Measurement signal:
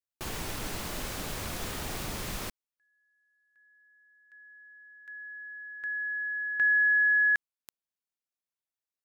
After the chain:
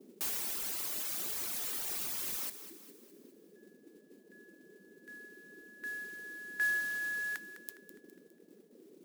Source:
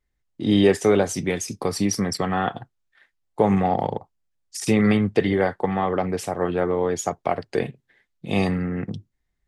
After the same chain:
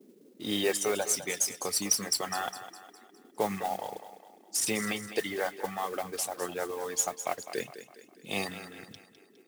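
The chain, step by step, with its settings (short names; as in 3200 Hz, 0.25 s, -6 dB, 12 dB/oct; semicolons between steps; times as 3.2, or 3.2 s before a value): band noise 180–430 Hz -43 dBFS; RIAA curve recording; reverb removal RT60 1.6 s; modulation noise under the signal 16 dB; thinning echo 0.205 s, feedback 48%, high-pass 180 Hz, level -12 dB; gain -7.5 dB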